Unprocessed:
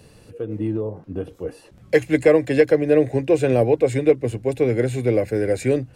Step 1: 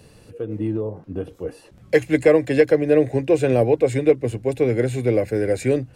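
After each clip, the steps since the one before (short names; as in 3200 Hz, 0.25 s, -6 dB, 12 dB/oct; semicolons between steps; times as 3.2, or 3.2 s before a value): nothing audible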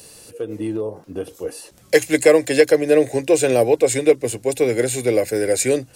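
tone controls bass -10 dB, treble +15 dB; gain +3 dB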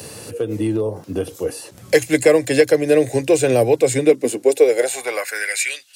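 high-pass sweep 94 Hz -> 3400 Hz, 3.7–5.83; three-band squash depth 40%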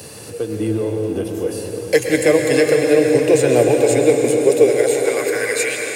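plate-style reverb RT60 4.9 s, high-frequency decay 0.75×, pre-delay 0.1 s, DRR 1 dB; gain -1 dB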